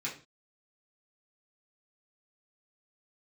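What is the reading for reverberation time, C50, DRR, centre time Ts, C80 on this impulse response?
not exponential, 9.5 dB, -7.0 dB, 22 ms, 15.0 dB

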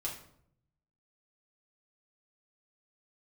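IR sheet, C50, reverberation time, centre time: 7.0 dB, 0.70 s, 28 ms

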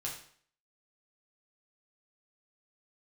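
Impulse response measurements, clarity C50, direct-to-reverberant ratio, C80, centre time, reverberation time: 6.0 dB, -3.5 dB, 9.5 dB, 30 ms, 0.55 s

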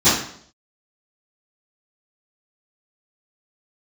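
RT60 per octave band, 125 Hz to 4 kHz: 0.65, 0.65, 0.65, 0.60, 0.55, 0.55 s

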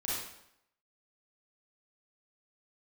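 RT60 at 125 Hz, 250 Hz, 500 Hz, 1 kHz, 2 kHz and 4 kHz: 0.70, 0.75, 0.75, 0.75, 0.70, 0.65 s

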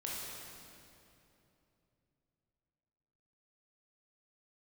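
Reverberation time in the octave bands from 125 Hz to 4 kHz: 4.1, 3.5, 3.2, 2.7, 2.4, 2.2 s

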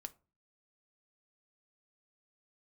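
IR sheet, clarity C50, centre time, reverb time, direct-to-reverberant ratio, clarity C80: 21.5 dB, 2 ms, 0.35 s, 9.0 dB, 27.5 dB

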